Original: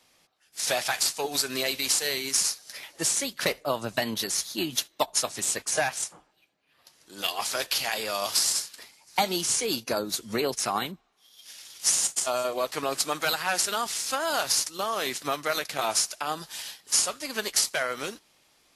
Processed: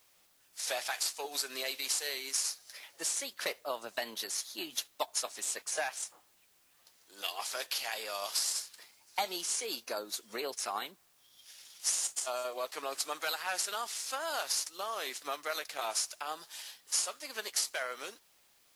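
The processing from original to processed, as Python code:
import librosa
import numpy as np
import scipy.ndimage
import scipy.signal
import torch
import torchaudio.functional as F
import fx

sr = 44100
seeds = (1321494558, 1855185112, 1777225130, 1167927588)

y = scipy.signal.sosfilt(scipy.signal.butter(2, 430.0, 'highpass', fs=sr, output='sos'), x)
y = fx.quant_dither(y, sr, seeds[0], bits=10, dither='triangular')
y = y * 10.0 ** (-8.0 / 20.0)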